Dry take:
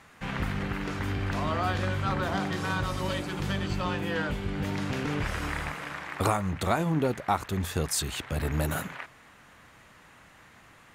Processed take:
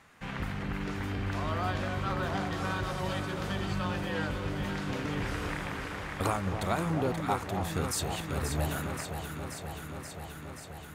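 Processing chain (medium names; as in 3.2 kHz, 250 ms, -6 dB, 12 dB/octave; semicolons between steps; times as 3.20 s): echo whose repeats swap between lows and highs 265 ms, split 990 Hz, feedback 87%, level -6 dB; trim -4.5 dB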